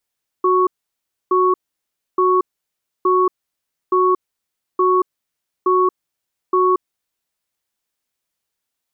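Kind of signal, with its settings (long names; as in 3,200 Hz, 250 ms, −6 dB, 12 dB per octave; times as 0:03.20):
tone pair in a cadence 368 Hz, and 1,110 Hz, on 0.23 s, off 0.64 s, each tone −14.5 dBFS 6.42 s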